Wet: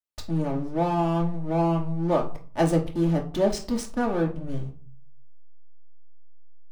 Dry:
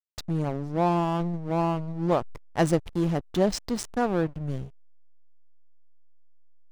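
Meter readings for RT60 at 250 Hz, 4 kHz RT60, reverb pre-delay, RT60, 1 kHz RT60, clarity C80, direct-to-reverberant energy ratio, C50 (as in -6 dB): 0.65 s, 0.30 s, 3 ms, 0.40 s, 0.40 s, 17.0 dB, -1.5 dB, 11.5 dB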